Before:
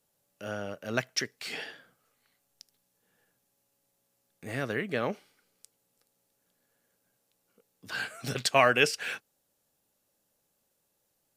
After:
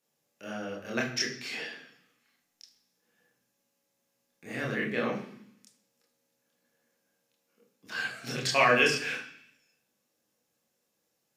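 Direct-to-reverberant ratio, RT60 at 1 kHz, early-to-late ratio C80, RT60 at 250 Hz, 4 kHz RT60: -2.0 dB, 0.65 s, 10.5 dB, 1.0 s, 0.85 s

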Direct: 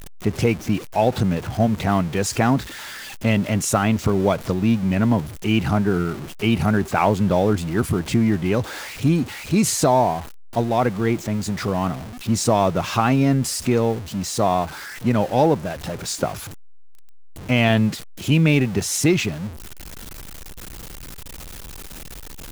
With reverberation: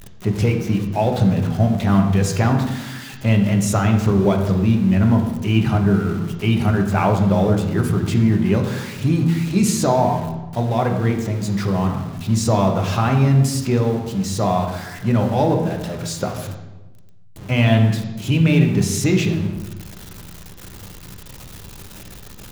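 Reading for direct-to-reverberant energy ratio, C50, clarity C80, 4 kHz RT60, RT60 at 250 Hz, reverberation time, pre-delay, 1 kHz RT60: 3.0 dB, 6.5 dB, 8.5 dB, 0.80 s, 1.4 s, 1.1 s, 3 ms, 1.0 s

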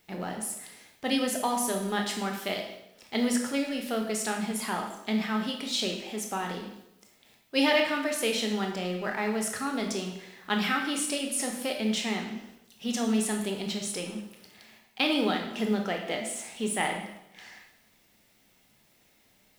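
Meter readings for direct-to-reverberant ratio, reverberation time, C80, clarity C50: 2.0 dB, 0.80 s, 8.0 dB, 5.5 dB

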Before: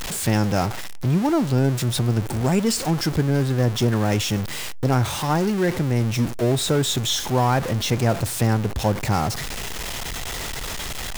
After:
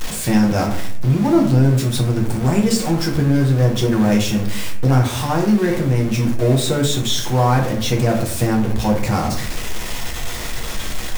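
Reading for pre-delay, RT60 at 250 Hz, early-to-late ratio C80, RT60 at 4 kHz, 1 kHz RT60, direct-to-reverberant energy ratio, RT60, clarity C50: 6 ms, 0.85 s, 12.0 dB, 0.35 s, 0.50 s, -0.5 dB, 0.60 s, 7.5 dB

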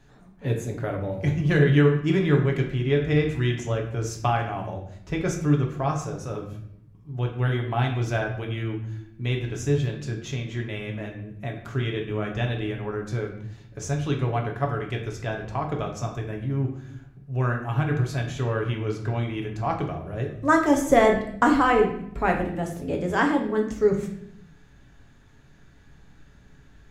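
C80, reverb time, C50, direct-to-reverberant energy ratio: 10.5 dB, 0.75 s, 7.0 dB, 1.5 dB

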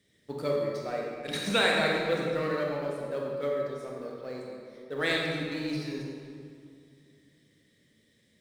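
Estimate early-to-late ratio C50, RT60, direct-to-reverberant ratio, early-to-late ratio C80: -0.5 dB, 2.3 s, -2.5 dB, 1.0 dB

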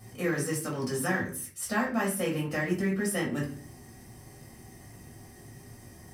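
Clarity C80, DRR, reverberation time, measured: 13.0 dB, -4.5 dB, 0.45 s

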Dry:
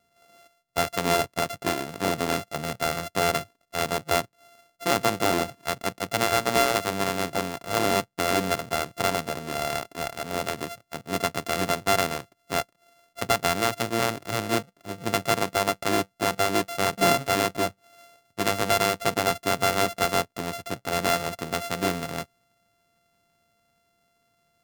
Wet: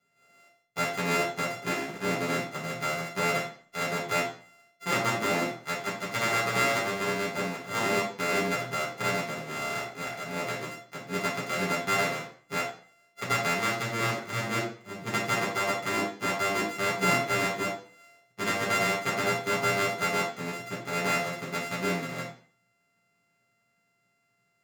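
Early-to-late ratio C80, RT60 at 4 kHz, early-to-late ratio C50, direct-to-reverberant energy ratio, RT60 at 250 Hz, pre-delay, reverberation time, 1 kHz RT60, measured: 10.5 dB, 0.40 s, 5.5 dB, -8.5 dB, 0.45 s, 3 ms, 0.45 s, 0.45 s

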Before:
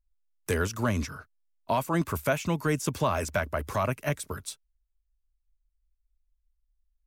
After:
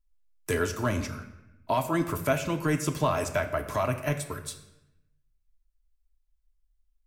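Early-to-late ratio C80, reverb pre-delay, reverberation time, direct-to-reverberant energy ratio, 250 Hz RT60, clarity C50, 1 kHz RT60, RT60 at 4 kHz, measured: 12.5 dB, 3 ms, 0.90 s, 4.0 dB, 1.2 s, 11.0 dB, 0.90 s, 0.70 s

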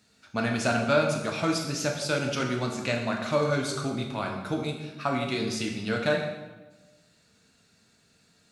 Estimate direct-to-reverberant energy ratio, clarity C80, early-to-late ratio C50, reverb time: 1.5 dB, 7.0 dB, 5.0 dB, 1.2 s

